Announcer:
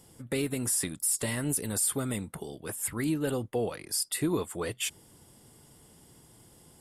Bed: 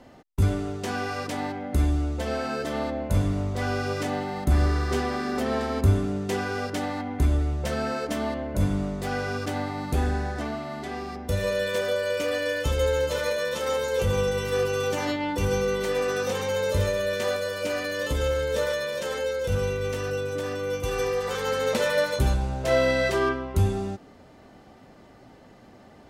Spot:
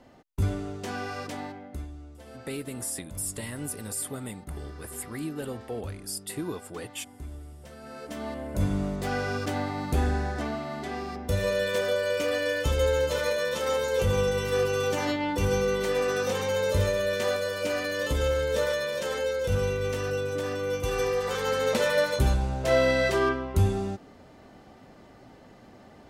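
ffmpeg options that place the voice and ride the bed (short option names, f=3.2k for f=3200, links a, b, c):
-filter_complex "[0:a]adelay=2150,volume=-5dB[a];[1:a]volume=13.5dB,afade=t=out:st=1.25:d=0.63:silence=0.199526,afade=t=in:st=7.81:d=1.07:silence=0.125893[b];[a][b]amix=inputs=2:normalize=0"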